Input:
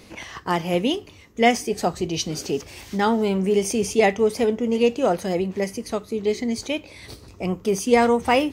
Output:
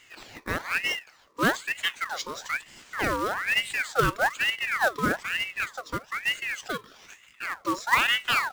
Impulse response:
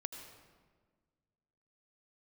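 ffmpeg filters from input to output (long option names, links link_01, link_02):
-af "highpass=240,equalizer=frequency=870:width_type=q:width=4:gain=-3,equalizer=frequency=2100:width_type=q:width=4:gain=-9,equalizer=frequency=3200:width_type=q:width=4:gain=-4,lowpass=frequency=5700:width=0.5412,lowpass=frequency=5700:width=1.3066,acrusher=bits=3:mode=log:mix=0:aa=0.000001,aeval=exprs='val(0)*sin(2*PI*1600*n/s+1600*0.55/1.1*sin(2*PI*1.1*n/s))':channel_layout=same,volume=-2dB"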